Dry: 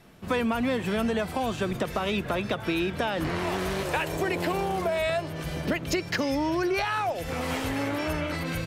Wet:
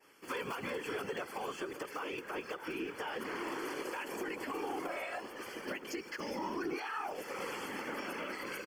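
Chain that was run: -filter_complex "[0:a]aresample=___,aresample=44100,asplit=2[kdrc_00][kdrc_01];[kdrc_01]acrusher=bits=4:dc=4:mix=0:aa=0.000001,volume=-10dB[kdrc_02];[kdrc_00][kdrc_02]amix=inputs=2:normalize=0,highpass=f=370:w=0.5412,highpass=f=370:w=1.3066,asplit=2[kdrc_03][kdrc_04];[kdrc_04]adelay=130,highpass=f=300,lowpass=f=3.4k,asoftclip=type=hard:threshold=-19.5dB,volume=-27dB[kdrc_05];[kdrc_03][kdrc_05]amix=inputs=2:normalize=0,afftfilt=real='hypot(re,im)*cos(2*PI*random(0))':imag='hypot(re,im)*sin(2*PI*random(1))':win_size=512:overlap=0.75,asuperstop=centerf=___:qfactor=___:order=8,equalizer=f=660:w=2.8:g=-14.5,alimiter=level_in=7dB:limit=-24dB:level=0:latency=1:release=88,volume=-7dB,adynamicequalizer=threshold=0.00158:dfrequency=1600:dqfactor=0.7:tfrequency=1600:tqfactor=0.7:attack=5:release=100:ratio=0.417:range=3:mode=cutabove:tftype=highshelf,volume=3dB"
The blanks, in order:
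32000, 3800, 5.1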